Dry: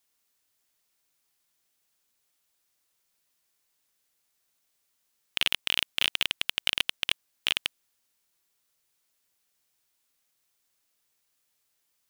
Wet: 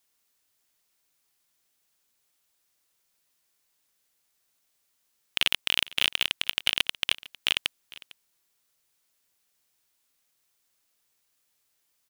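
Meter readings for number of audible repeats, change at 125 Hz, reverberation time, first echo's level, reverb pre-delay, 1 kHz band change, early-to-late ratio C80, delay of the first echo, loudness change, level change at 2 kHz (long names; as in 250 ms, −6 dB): 1, +1.5 dB, no reverb audible, −20.5 dB, no reverb audible, +1.5 dB, no reverb audible, 453 ms, +1.5 dB, +1.5 dB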